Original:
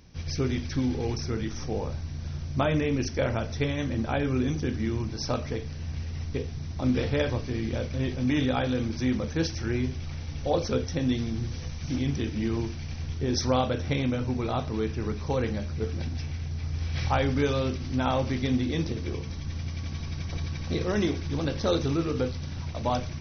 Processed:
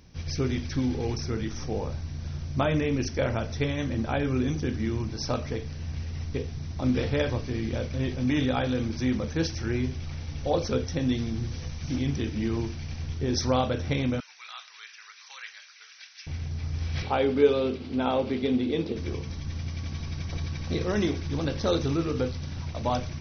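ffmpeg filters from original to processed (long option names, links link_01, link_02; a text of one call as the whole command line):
ffmpeg -i in.wav -filter_complex "[0:a]asettb=1/sr,asplit=3[link_01][link_02][link_03];[link_01]atrim=end=14.204[link_04];[link_02]atrim=start=14.2:end=16.27,asetpts=PTS-STARTPTS,afade=type=in:duration=0.004:curve=qsin,afade=type=out:start_time=2.066:duration=0.004:curve=qsin,highpass=frequency=1500:width=0.5412,highpass=frequency=1500:width=1.3066[link_05];[link_03]atrim=start=16.266[link_06];[link_04][link_05]acrossfade=duration=0.004:curve1=hsin:curve2=qsin[link_07];[link_07][link_06]acrossfade=duration=0.004:curve1=qsin:curve2=hsin,asettb=1/sr,asplit=3[link_08][link_09][link_10];[link_08]atrim=end=17.024[link_11];[link_09]atrim=start=17.02:end=18.96,asetpts=PTS-STARTPTS,afade=type=in:duration=0.004:curve=qsin,afade=type=out:start_time=1.936:duration=0.004:curve=qsin,highpass=130,equalizer=frequency=140:width_type=q:width=4:gain=-9,equalizer=frequency=220:width_type=q:width=4:gain=3,equalizer=frequency=430:width_type=q:width=4:gain=9,equalizer=frequency=1100:width_type=q:width=4:gain=-3,equalizer=frequency=1800:width_type=q:width=4:gain=-6,lowpass=frequency=4300:width=0.5412,lowpass=frequency=4300:width=1.3066[link_12];[link_10]atrim=start=18.956[link_13];[link_11][link_12]acrossfade=duration=0.004:curve1=hsin:curve2=qsin[link_14];[link_14][link_13]acrossfade=duration=0.004:curve1=qsin:curve2=hsin" out.wav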